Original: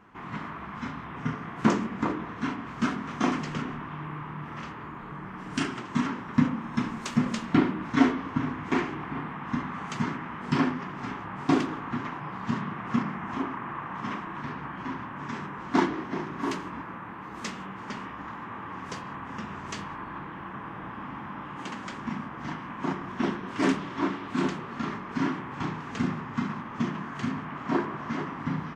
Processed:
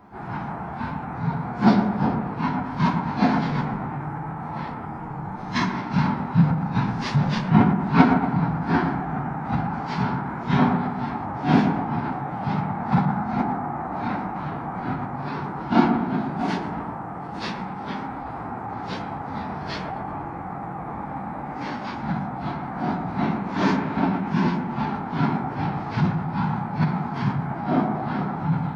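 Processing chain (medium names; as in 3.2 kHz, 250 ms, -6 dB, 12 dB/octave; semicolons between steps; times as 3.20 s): phase randomisation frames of 100 ms; feedback echo behind a low-pass 118 ms, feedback 49%, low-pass 2.4 kHz, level -7 dB; formant shift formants -6 st; trim +6 dB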